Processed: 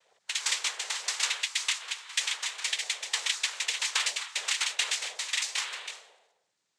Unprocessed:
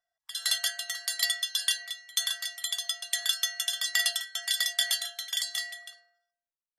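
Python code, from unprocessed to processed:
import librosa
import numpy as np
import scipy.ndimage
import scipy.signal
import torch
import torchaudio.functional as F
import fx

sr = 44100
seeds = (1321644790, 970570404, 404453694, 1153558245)

y = fx.noise_vocoder(x, sr, seeds[0], bands=6)
y = fx.band_squash(y, sr, depth_pct=70)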